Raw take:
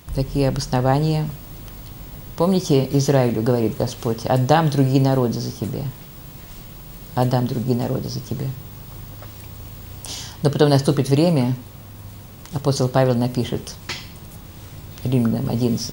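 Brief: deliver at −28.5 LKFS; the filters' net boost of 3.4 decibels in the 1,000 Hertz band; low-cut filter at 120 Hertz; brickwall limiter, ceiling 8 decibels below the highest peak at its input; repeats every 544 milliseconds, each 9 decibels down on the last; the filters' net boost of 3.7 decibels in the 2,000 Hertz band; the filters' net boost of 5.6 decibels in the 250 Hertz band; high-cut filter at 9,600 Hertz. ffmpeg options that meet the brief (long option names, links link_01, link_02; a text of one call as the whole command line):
ffmpeg -i in.wav -af "highpass=120,lowpass=9600,equalizer=frequency=250:width_type=o:gain=7,equalizer=frequency=1000:width_type=o:gain=3.5,equalizer=frequency=2000:width_type=o:gain=3.5,alimiter=limit=-5dB:level=0:latency=1,aecho=1:1:544|1088|1632|2176:0.355|0.124|0.0435|0.0152,volume=-10dB" out.wav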